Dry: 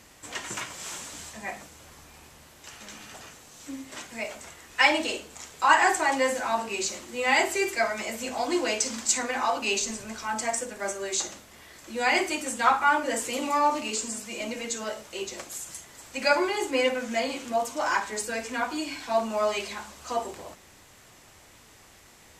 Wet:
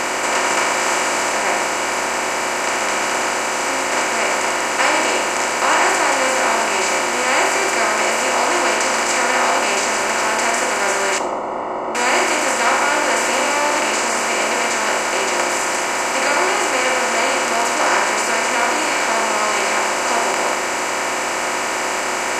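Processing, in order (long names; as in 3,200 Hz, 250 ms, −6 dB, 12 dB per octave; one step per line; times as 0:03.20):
compressor on every frequency bin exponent 0.2
0:11.18–0:11.95: Savitzky-Golay smoothing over 65 samples
coupled-rooms reverb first 0.52 s, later 1.9 s, DRR 9 dB
level −4 dB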